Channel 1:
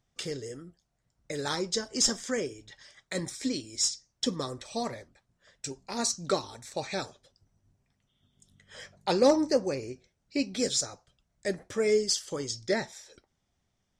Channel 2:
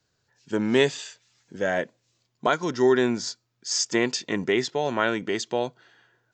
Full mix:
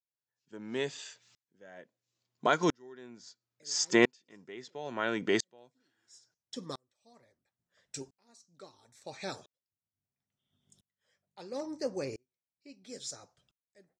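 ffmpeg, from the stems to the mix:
-filter_complex "[0:a]adelay=2300,volume=0.944[s0];[1:a]volume=1.19,asplit=2[s1][s2];[s2]apad=whole_len=718678[s3];[s0][s3]sidechaincompress=threshold=0.0158:ratio=16:attack=8.2:release=1100[s4];[s4][s1]amix=inputs=2:normalize=0,highpass=100,aeval=exprs='val(0)*pow(10,-38*if(lt(mod(-0.74*n/s,1),2*abs(-0.74)/1000),1-mod(-0.74*n/s,1)/(2*abs(-0.74)/1000),(mod(-0.74*n/s,1)-2*abs(-0.74)/1000)/(1-2*abs(-0.74)/1000))/20)':c=same"

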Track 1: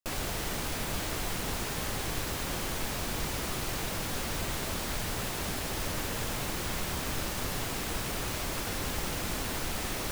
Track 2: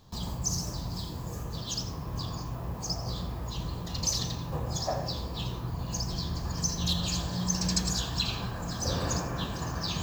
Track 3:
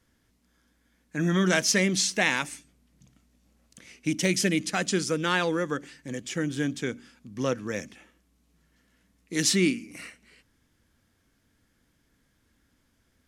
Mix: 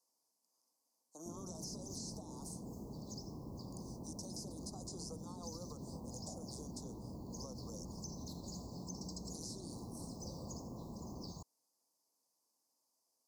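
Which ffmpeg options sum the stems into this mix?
-filter_complex "[0:a]alimiter=level_in=1.5:limit=0.0631:level=0:latency=1,volume=0.668,bandpass=f=210:t=q:w=1.8:csg=0,adelay=1200,volume=1[s0];[1:a]adelay=1400,volume=0.168[s1];[2:a]highpass=900,volume=0.596[s2];[s1][s2]amix=inputs=2:normalize=0,alimiter=level_in=2.37:limit=0.0631:level=0:latency=1:release=49,volume=0.422,volume=1[s3];[s0][s3]amix=inputs=2:normalize=0,asuperstop=centerf=2200:order=12:qfactor=0.63,acrossover=split=320|4300[s4][s5][s6];[s4]acompressor=threshold=0.00501:ratio=4[s7];[s5]acompressor=threshold=0.00282:ratio=4[s8];[s6]acompressor=threshold=0.00316:ratio=4[s9];[s7][s8][s9]amix=inputs=3:normalize=0"

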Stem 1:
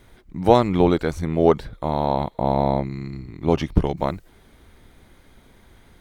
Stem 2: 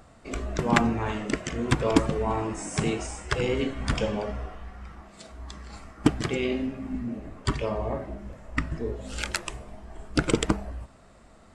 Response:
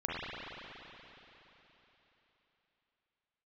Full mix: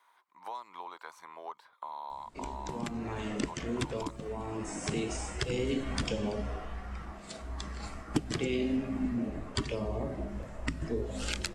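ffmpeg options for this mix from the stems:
-filter_complex "[0:a]acompressor=threshold=0.1:ratio=2.5,highpass=f=1000:t=q:w=8.1,volume=0.178,asplit=2[s0][s1];[1:a]acrossover=split=240|6200[s2][s3][s4];[s2]acompressor=threshold=0.0141:ratio=4[s5];[s3]acompressor=threshold=0.0355:ratio=4[s6];[s4]acompressor=threshold=0.00398:ratio=4[s7];[s5][s6][s7]amix=inputs=3:normalize=0,adelay=2100,volume=1.26[s8];[s1]apad=whole_len=601938[s9];[s8][s9]sidechaincompress=threshold=0.0141:ratio=3:attack=12:release=1390[s10];[s0][s10]amix=inputs=2:normalize=0,acrossover=split=420|3000[s11][s12][s13];[s12]acompressor=threshold=0.01:ratio=6[s14];[s11][s14][s13]amix=inputs=3:normalize=0"

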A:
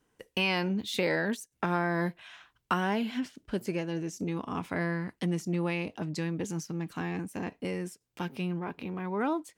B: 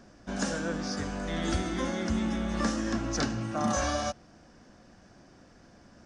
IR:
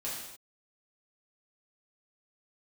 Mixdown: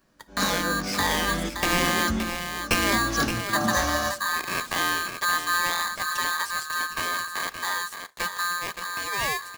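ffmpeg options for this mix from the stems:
-filter_complex "[0:a]dynaudnorm=f=550:g=5:m=1.5,aeval=exprs='val(0)*sgn(sin(2*PI*1400*n/s))':c=same,volume=1.12,asplit=4[s0][s1][s2][s3];[s1]volume=0.0708[s4];[s2]volume=0.422[s5];[1:a]volume=1.19,asplit=2[s6][s7];[s7]volume=0.178[s8];[s3]apad=whole_len=267133[s9];[s6][s9]sidechaingate=range=0.0224:threshold=0.00708:ratio=16:detection=peak[s10];[2:a]atrim=start_sample=2205[s11];[s4][s8]amix=inputs=2:normalize=0[s12];[s12][s11]afir=irnorm=-1:irlink=0[s13];[s5]aecho=0:1:571:1[s14];[s0][s10][s13][s14]amix=inputs=4:normalize=0"

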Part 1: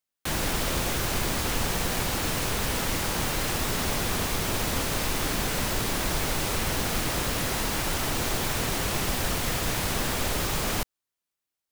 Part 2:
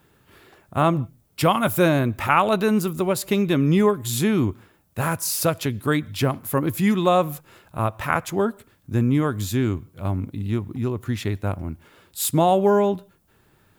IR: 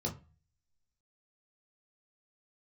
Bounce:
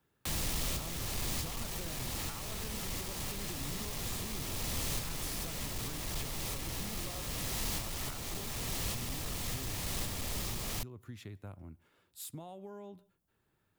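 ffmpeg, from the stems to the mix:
-filter_complex "[0:a]asoftclip=type=hard:threshold=0.0596,bandreject=f=1500:w=9.6,volume=0.668[s0];[1:a]acompressor=threshold=0.0708:ratio=6,volume=0.126,asplit=2[s1][s2];[s2]apad=whole_len=516496[s3];[s0][s3]sidechaincompress=threshold=0.00631:ratio=8:attack=12:release=924[s4];[s4][s1]amix=inputs=2:normalize=0,acrossover=split=180|3000[s5][s6][s7];[s6]acompressor=threshold=0.00398:ratio=2[s8];[s5][s8][s7]amix=inputs=3:normalize=0"

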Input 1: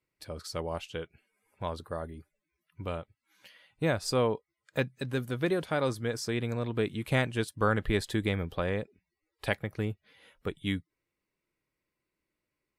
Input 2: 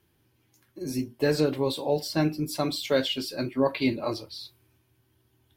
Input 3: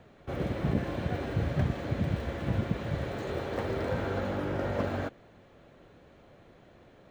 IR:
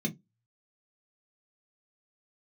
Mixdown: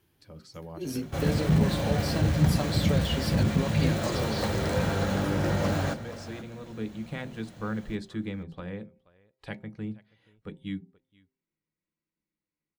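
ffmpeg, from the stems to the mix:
-filter_complex "[0:a]lowpass=7200,bandreject=f=130.2:t=h:w=4,bandreject=f=260.4:t=h:w=4,bandreject=f=390.6:t=h:w=4,bandreject=f=520.8:t=h:w=4,bandreject=f=651:t=h:w=4,bandreject=f=781.2:t=h:w=4,bandreject=f=911.4:t=h:w=4,volume=0.376,asplit=3[s0][s1][s2];[s1]volume=0.237[s3];[s2]volume=0.0668[s4];[1:a]acompressor=threshold=0.0398:ratio=6,volume=0.944[s5];[2:a]equalizer=f=350:w=2.1:g=-6.5,aeval=exprs='0.15*sin(PI/2*1.78*val(0)/0.15)':c=same,bass=f=250:g=1,treble=f=4000:g=14,adelay=850,volume=0.668,asplit=3[s6][s7][s8];[s7]volume=0.158[s9];[s8]volume=0.178[s10];[3:a]atrim=start_sample=2205[s11];[s3][s9]amix=inputs=2:normalize=0[s12];[s12][s11]afir=irnorm=-1:irlink=0[s13];[s4][s10]amix=inputs=2:normalize=0,aecho=0:1:479:1[s14];[s0][s5][s6][s13][s14]amix=inputs=5:normalize=0"

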